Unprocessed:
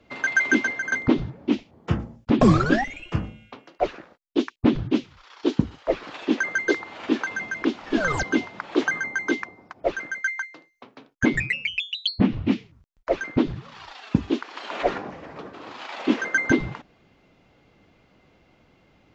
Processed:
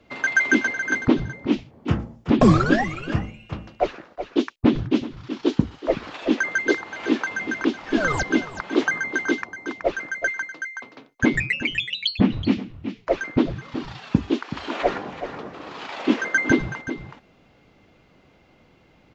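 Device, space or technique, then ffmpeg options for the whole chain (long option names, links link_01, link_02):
ducked delay: -filter_complex "[0:a]asplit=3[link_01][link_02][link_03];[link_02]adelay=375,volume=-6dB[link_04];[link_03]apad=whole_len=860993[link_05];[link_04][link_05]sidechaincompress=threshold=-26dB:ratio=5:attack=7.7:release=658[link_06];[link_01][link_06]amix=inputs=2:normalize=0,volume=1.5dB"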